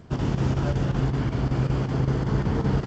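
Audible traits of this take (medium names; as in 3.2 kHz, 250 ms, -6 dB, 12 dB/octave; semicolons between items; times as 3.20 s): chopped level 5.3 Hz, depth 60%, duty 85%; G.722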